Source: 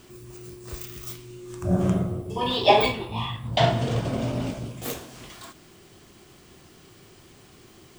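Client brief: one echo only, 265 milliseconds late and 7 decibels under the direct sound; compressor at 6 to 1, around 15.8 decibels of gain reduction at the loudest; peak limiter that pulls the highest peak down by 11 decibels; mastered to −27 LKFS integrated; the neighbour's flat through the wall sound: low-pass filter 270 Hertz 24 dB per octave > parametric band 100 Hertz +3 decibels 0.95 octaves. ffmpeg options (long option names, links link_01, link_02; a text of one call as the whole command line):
ffmpeg -i in.wav -af "acompressor=threshold=-29dB:ratio=6,alimiter=level_in=1.5dB:limit=-24dB:level=0:latency=1,volume=-1.5dB,lowpass=frequency=270:width=0.5412,lowpass=frequency=270:width=1.3066,equalizer=frequency=100:width_type=o:width=0.95:gain=3,aecho=1:1:265:0.447,volume=10.5dB" out.wav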